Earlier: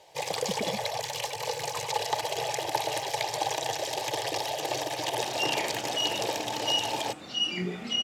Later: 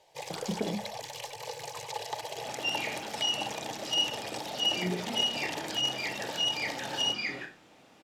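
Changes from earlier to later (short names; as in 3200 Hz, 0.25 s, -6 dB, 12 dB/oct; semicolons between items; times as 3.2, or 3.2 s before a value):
speech: send on; first sound -7.5 dB; second sound: entry -2.75 s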